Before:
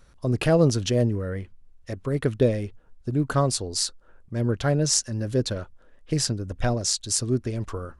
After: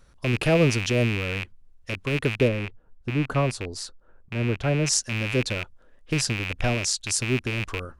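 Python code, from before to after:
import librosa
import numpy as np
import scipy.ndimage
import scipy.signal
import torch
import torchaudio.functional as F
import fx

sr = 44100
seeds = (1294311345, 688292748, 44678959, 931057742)

y = fx.rattle_buzz(x, sr, strikes_db=-34.0, level_db=-16.0)
y = fx.high_shelf(y, sr, hz=2500.0, db=-10.5, at=(2.47, 4.86), fade=0.02)
y = y * 10.0 ** (-1.0 / 20.0)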